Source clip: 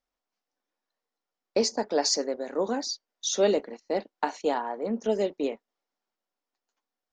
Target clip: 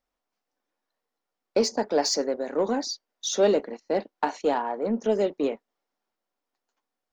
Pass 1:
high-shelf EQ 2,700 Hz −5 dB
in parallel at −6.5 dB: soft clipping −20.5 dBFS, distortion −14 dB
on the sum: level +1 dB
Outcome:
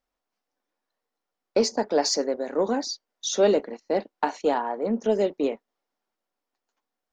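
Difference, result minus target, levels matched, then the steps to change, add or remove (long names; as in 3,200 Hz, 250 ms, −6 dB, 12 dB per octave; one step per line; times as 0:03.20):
soft clipping: distortion −7 dB
change: soft clipping −28 dBFS, distortion −7 dB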